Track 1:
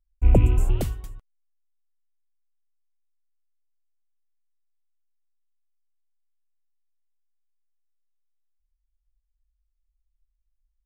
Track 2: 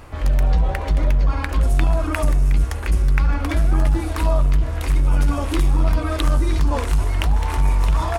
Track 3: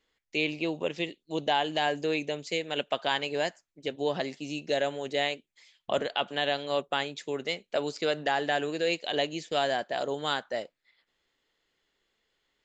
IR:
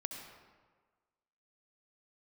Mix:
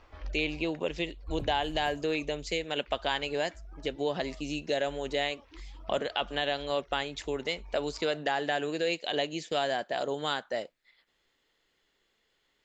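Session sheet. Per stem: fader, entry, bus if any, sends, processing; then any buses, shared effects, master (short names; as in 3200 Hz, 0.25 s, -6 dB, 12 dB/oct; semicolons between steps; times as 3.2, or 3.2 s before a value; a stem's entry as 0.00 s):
-20.0 dB, 1.05 s, no send, dry
-12.5 dB, 0.00 s, no send, reverb removal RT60 1.1 s; elliptic low-pass 5800 Hz; bell 140 Hz -13.5 dB 1.5 oct; auto duck -12 dB, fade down 1.15 s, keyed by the third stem
+2.5 dB, 0.00 s, no send, dry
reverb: off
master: compressor 1.5:1, threshold -33 dBFS, peak gain reduction 5.5 dB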